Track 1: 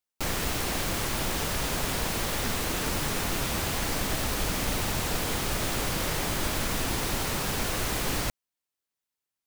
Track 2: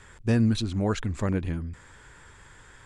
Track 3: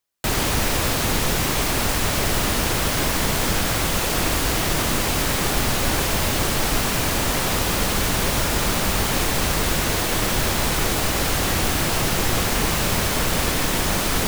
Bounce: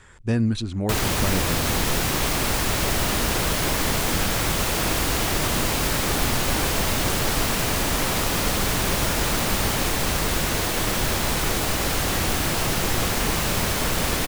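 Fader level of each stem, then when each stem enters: -2.5, +0.5, -2.0 dB; 1.45, 0.00, 0.65 s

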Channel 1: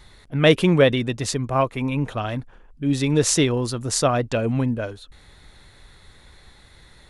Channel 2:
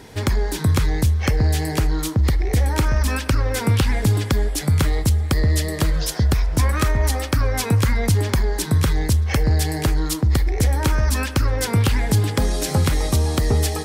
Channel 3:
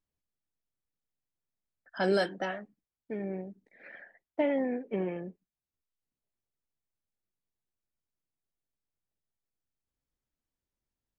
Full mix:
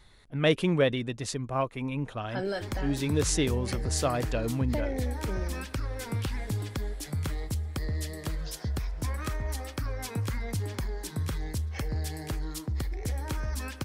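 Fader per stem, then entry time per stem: -8.5, -14.0, -5.5 dB; 0.00, 2.45, 0.35 s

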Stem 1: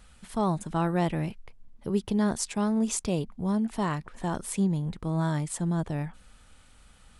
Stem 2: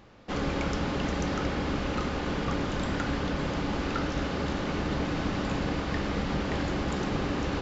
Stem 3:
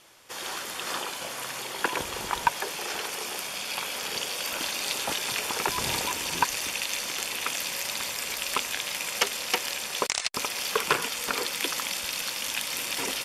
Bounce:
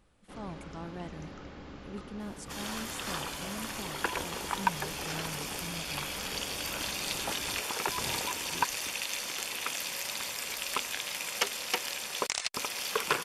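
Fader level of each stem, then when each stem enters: -16.0, -16.5, -4.5 dB; 0.00, 0.00, 2.20 s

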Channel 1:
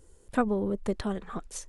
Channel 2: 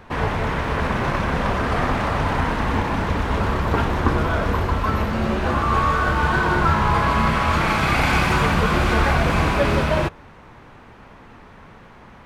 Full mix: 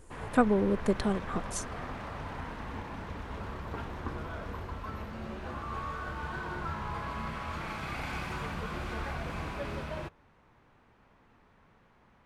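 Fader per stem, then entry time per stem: +2.0, -18.5 dB; 0.00, 0.00 s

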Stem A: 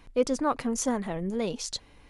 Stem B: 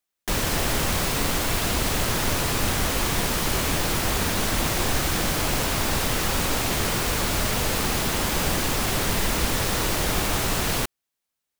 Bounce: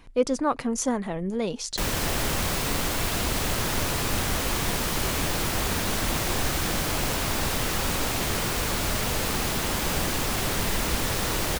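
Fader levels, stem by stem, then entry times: +2.0, -2.5 dB; 0.00, 1.50 s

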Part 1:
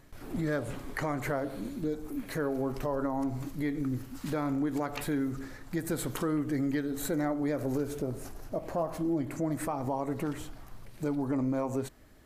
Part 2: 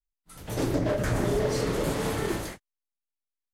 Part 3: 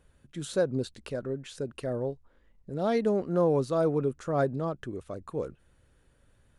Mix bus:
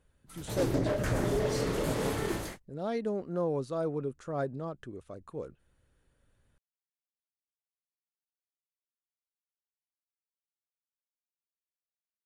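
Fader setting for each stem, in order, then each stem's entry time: off, -3.5 dB, -6.5 dB; off, 0.00 s, 0.00 s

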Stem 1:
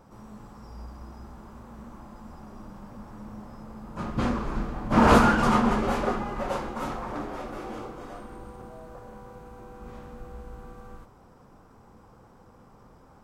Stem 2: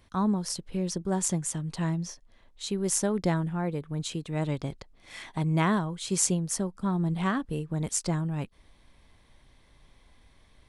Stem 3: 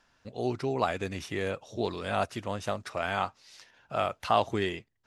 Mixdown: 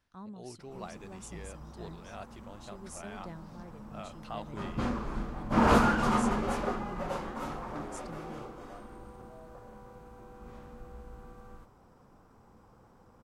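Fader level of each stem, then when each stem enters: -5.5, -19.5, -16.0 dB; 0.60, 0.00, 0.00 s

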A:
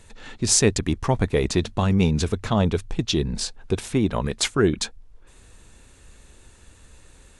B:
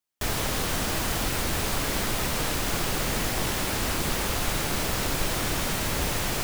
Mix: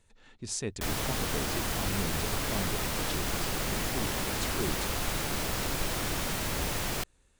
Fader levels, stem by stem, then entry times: -16.5, -4.5 dB; 0.00, 0.60 s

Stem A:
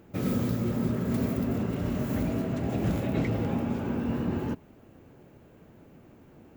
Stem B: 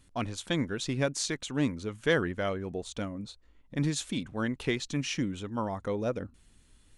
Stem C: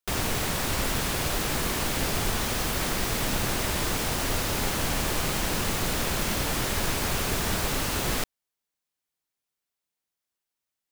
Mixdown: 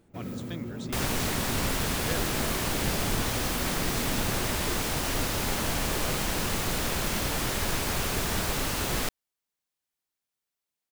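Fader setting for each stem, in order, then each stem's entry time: -9.0, -10.5, -1.5 dB; 0.00, 0.00, 0.85 s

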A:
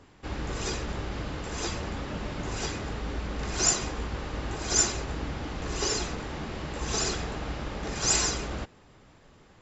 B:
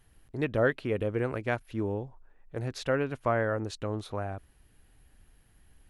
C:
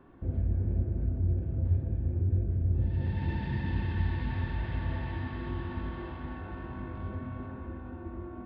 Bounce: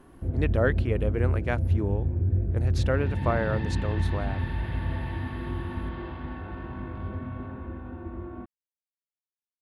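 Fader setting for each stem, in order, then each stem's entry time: off, +0.5 dB, +3.0 dB; off, 0.00 s, 0.00 s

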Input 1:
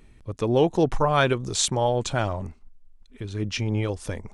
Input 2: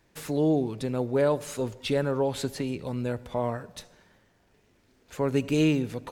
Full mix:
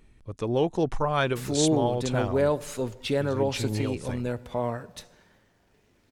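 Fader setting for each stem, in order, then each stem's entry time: -4.5, 0.0 dB; 0.00, 1.20 s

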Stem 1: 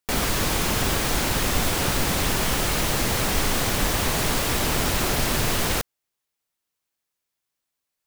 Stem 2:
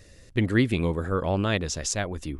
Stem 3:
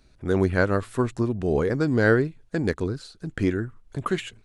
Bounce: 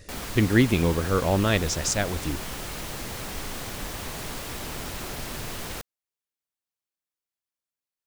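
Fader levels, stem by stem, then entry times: -11.5 dB, +2.5 dB, off; 0.00 s, 0.00 s, off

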